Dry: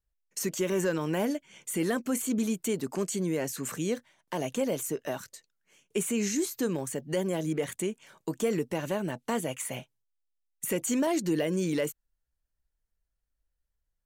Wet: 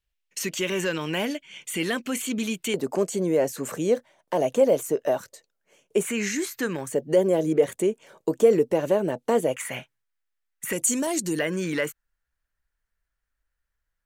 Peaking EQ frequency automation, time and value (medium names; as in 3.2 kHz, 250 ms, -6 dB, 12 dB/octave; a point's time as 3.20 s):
peaking EQ +12.5 dB 1.4 oct
2.8 kHz
from 2.74 s 570 Hz
from 6.05 s 1.8 kHz
from 6.86 s 490 Hz
from 9.56 s 1.7 kHz
from 10.73 s 9.2 kHz
from 11.39 s 1.6 kHz